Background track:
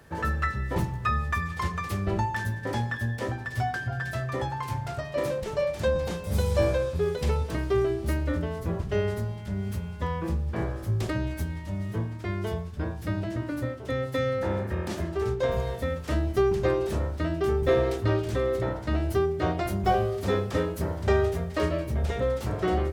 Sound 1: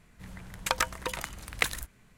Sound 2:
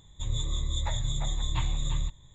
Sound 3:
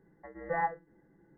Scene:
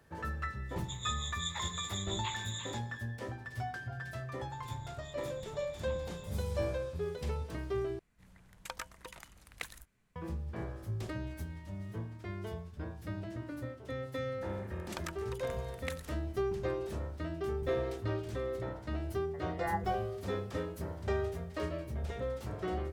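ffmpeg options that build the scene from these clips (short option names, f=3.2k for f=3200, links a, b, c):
-filter_complex "[2:a]asplit=2[a][b];[1:a]asplit=2[c][d];[0:a]volume=-10.5dB[e];[a]highpass=1.2k[f];[b]highpass=78[g];[e]asplit=2[h][i];[h]atrim=end=7.994[j];[c]atrim=end=2.17,asetpts=PTS-STARTPTS,volume=-15dB[k];[i]atrim=start=10.156[l];[f]atrim=end=2.34,asetpts=PTS-STARTPTS,volume=-1dB,afade=t=in:d=0.004:c=hsin,afade=t=out:st=2.336:d=0.004:c=hsin,adelay=690[m];[g]atrim=end=2.34,asetpts=PTS-STARTPTS,volume=-18dB,afade=t=in:d=0.004:c=hsin,afade=t=out:st=2.336:d=0.004:c=hsin,adelay=4320[n];[d]atrim=end=2.17,asetpts=PTS-STARTPTS,volume=-15.5dB,afade=t=in:d=0.004:c=hsin,afade=t=out:st=2.166:d=0.004:c=hsin,adelay=14260[o];[3:a]atrim=end=1.37,asetpts=PTS-STARTPTS,volume=-4.5dB,afade=t=in:d=0.004:c=hsin,afade=t=out:st=1.366:d=0.004:c=hsin,adelay=19100[p];[j][k]acrossfade=d=0.004:c1=hsin:c2=hsin[q];[q][l]acrossfade=d=0.004:c1=hsin:c2=hsin[r];[r][m][n][o][p]amix=inputs=5:normalize=0"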